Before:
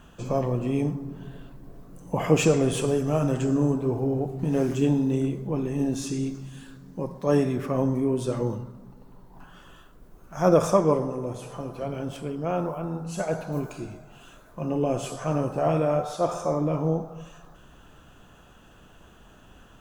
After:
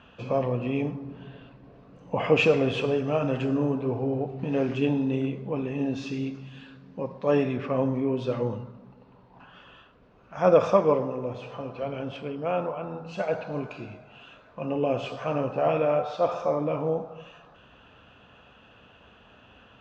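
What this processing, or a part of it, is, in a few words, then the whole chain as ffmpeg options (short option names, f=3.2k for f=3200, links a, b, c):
guitar cabinet: -af "highpass=84,equalizer=f=160:t=q:w=4:g=-8,equalizer=f=340:t=q:w=4:g=-7,equalizer=f=500:t=q:w=4:g=3,equalizer=f=2.6k:t=q:w=4:g=7,lowpass=f=4.3k:w=0.5412,lowpass=f=4.3k:w=1.3066"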